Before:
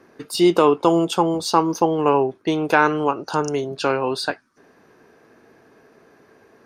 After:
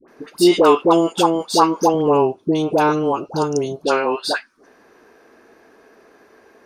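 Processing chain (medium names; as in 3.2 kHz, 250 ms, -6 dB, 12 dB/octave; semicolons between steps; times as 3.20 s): peaking EQ 110 Hz -14.5 dB 0.96 oct, from 1.94 s 1.8 kHz, from 3.84 s 130 Hz; phase dispersion highs, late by 82 ms, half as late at 880 Hz; trim +3.5 dB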